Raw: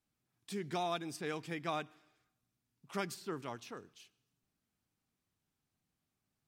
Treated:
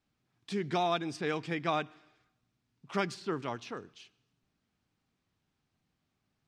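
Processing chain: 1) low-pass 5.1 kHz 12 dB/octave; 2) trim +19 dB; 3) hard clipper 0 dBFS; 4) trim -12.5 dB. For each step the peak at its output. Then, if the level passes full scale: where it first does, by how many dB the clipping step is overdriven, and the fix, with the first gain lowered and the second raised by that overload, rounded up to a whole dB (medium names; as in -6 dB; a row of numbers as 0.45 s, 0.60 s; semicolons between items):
-23.5 dBFS, -4.5 dBFS, -4.5 dBFS, -17.0 dBFS; nothing clips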